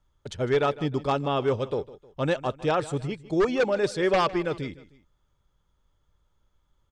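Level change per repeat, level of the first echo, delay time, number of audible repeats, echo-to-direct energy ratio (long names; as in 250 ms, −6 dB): −7.0 dB, −18.0 dB, 155 ms, 2, −17.0 dB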